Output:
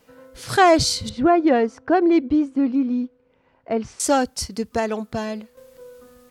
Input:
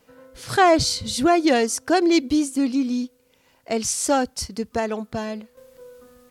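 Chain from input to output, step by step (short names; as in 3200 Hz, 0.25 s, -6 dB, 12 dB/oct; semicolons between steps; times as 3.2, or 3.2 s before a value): 1.09–4 LPF 1600 Hz 12 dB/oct; gain +1.5 dB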